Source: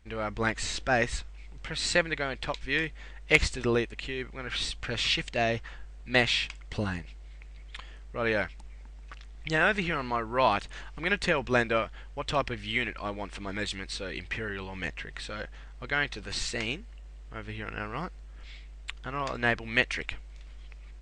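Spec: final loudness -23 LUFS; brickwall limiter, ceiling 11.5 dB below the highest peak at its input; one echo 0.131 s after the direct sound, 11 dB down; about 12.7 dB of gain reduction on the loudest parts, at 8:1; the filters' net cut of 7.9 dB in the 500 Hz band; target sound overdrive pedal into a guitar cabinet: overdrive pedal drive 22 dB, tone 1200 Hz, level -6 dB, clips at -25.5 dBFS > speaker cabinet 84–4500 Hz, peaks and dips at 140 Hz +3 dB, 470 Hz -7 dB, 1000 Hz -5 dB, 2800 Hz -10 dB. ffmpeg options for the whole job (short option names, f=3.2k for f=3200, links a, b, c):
-filter_complex "[0:a]equalizer=f=500:t=o:g=-6.5,acompressor=threshold=-30dB:ratio=8,alimiter=level_in=3.5dB:limit=-24dB:level=0:latency=1,volume=-3.5dB,aecho=1:1:131:0.282,asplit=2[a][b];[b]highpass=f=720:p=1,volume=22dB,asoftclip=type=tanh:threshold=-25.5dB[c];[a][c]amix=inputs=2:normalize=0,lowpass=f=1.2k:p=1,volume=-6dB,highpass=84,equalizer=f=140:t=q:w=4:g=3,equalizer=f=470:t=q:w=4:g=-7,equalizer=f=1k:t=q:w=4:g=-5,equalizer=f=2.8k:t=q:w=4:g=-10,lowpass=f=4.5k:w=0.5412,lowpass=f=4.5k:w=1.3066,volume=16.5dB"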